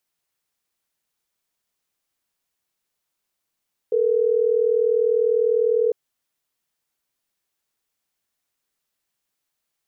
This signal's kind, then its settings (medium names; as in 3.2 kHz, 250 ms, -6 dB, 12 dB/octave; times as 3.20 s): call progress tone ringback tone, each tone -19 dBFS